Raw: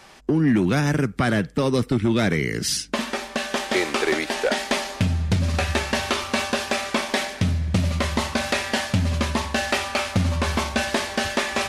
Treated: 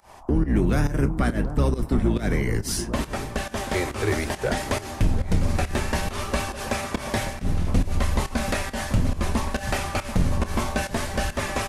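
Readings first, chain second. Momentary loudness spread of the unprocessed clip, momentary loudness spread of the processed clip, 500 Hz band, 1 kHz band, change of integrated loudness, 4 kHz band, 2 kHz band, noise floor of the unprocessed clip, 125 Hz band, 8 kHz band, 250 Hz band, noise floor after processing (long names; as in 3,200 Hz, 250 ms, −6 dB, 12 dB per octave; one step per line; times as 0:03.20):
4 LU, 5 LU, −3.0 dB, −3.0 dB, −2.5 dB, −8.0 dB, −5.5 dB, −39 dBFS, −1.0 dB, −3.0 dB, −3.0 dB, −38 dBFS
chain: sub-octave generator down 2 octaves, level +3 dB
flanger 0.62 Hz, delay 0.6 ms, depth 9.3 ms, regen +65%
on a send: delay that swaps between a low-pass and a high-pass 735 ms, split 1,200 Hz, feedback 72%, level −12 dB
on the sum: noise in a band 610–1,100 Hz −51 dBFS
in parallel at −2 dB: brickwall limiter −18.5 dBFS, peak gain reduction 8 dB
on the sum: high-shelf EQ 9,800 Hz +7.5 dB
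slap from a distant wall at 17 metres, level −30 dB
fake sidechain pumping 138 BPM, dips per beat 1, −22 dB, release 145 ms
parametric band 3,700 Hz −6.5 dB 1.8 octaves
double-tracking delay 28 ms −14 dB
level −2 dB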